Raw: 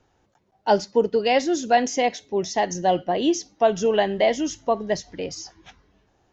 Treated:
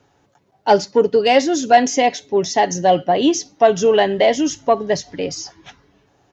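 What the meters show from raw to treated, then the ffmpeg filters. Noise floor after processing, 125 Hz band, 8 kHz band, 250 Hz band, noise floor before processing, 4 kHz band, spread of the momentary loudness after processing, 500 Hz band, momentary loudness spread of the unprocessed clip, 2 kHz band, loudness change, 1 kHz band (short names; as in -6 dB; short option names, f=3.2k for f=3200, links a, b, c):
-61 dBFS, +5.5 dB, n/a, +5.5 dB, -66 dBFS, +6.0 dB, 11 LU, +6.0 dB, 11 LU, +5.5 dB, +6.0 dB, +6.5 dB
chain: -af "acontrast=58,highpass=70,aecho=1:1:7.1:0.32"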